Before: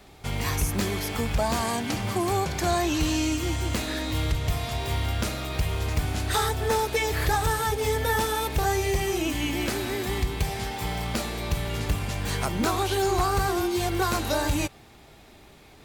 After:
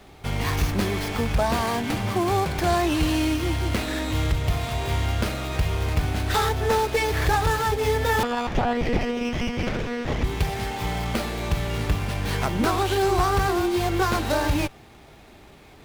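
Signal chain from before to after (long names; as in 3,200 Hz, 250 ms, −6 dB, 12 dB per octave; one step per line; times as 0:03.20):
0:08.23–0:10.24: one-pitch LPC vocoder at 8 kHz 240 Hz
windowed peak hold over 5 samples
level +3 dB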